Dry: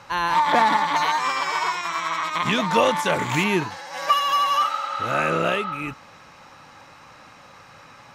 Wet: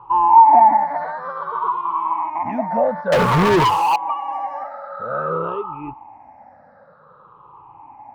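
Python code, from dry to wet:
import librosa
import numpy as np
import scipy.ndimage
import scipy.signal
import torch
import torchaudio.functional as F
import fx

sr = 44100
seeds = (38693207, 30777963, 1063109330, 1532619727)

p1 = fx.spec_ripple(x, sr, per_octave=0.66, drift_hz=-0.53, depth_db=21)
p2 = np.clip(p1, -10.0 ** (-16.0 / 20.0), 10.0 ** (-16.0 / 20.0))
p3 = p1 + (p2 * 10.0 ** (-9.0 / 20.0))
p4 = fx.lowpass_res(p3, sr, hz=890.0, q=3.8)
p5 = fx.leveller(p4, sr, passes=5, at=(3.12, 3.96))
y = p5 * 10.0 ** (-10.0 / 20.0)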